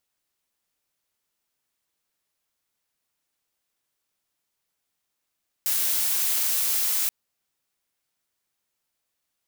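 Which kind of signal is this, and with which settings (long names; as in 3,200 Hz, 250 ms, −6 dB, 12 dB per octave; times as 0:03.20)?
noise blue, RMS −24 dBFS 1.43 s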